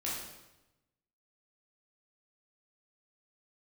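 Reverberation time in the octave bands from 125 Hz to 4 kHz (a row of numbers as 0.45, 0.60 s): 1.3, 1.1, 1.0, 0.95, 0.90, 0.85 s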